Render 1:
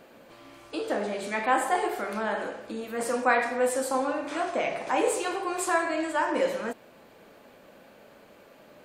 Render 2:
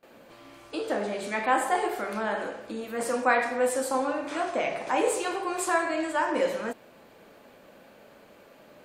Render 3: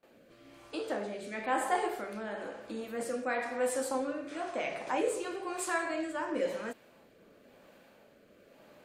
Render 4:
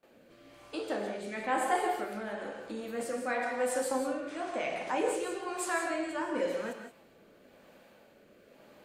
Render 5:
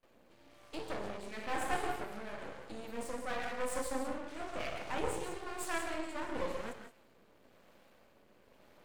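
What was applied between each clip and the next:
noise gate with hold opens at −45 dBFS
rotating-speaker cabinet horn 1 Hz; level −4 dB
reverb whose tail is shaped and stops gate 200 ms rising, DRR 6 dB
half-wave rectification; level −1.5 dB

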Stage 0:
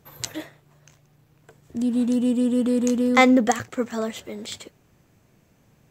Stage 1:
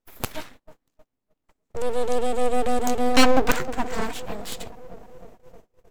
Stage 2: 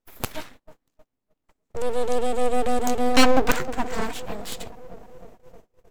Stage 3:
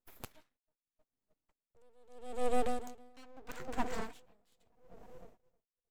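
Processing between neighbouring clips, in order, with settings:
bucket-brigade delay 308 ms, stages 1,024, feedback 71%, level −13 dB; full-wave rectification; noise gate −46 dBFS, range −26 dB; level +2.5 dB
no processing that can be heard
tremolo with a sine in dB 0.78 Hz, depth 33 dB; level −8 dB

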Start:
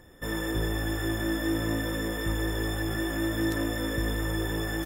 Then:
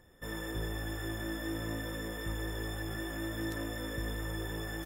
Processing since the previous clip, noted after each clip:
parametric band 300 Hz −3.5 dB 0.44 octaves
level −7.5 dB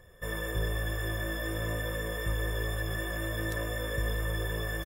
comb filter 1.8 ms, depth 68%
level +3 dB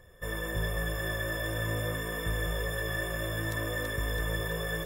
echo with a time of its own for lows and highs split 1,700 Hz, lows 209 ms, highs 331 ms, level −4.5 dB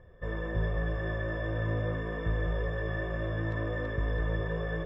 head-to-tape spacing loss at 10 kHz 42 dB
level +3 dB

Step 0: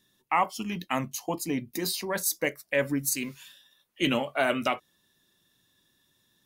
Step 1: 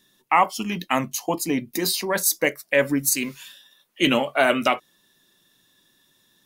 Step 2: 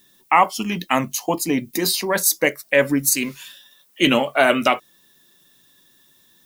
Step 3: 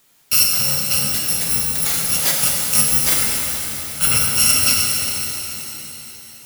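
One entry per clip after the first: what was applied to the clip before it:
parametric band 72 Hz −11.5 dB 1.4 octaves; level +7 dB
background noise violet −62 dBFS; level +3 dB
samples in bit-reversed order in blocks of 128 samples; reverb with rising layers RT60 3.7 s, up +7 semitones, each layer −8 dB, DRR −2.5 dB; level −2 dB

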